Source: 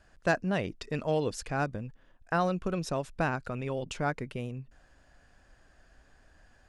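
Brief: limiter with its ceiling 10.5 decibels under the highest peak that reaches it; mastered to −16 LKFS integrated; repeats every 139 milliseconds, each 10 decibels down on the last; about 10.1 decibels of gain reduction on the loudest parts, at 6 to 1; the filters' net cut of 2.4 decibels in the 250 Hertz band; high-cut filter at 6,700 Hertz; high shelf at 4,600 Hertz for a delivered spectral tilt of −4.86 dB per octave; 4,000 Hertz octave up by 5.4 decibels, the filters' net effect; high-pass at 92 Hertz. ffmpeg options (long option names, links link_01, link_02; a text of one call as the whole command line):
ffmpeg -i in.wav -af "highpass=92,lowpass=6700,equalizer=frequency=250:width_type=o:gain=-3.5,equalizer=frequency=4000:width_type=o:gain=5.5,highshelf=frequency=4600:gain=4.5,acompressor=threshold=-32dB:ratio=6,alimiter=level_in=5dB:limit=-24dB:level=0:latency=1,volume=-5dB,aecho=1:1:139|278|417|556:0.316|0.101|0.0324|0.0104,volume=24dB" out.wav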